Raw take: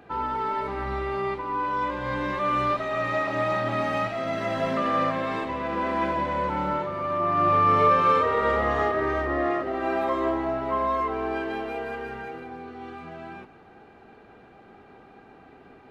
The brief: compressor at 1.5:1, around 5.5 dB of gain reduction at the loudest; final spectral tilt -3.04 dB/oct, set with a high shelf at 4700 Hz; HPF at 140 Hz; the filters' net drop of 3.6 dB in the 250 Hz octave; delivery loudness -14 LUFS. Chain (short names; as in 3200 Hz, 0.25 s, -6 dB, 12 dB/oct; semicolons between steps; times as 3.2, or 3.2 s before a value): HPF 140 Hz; bell 250 Hz -4.5 dB; high shelf 4700 Hz +3 dB; compressor 1.5:1, threshold -32 dBFS; gain +15.5 dB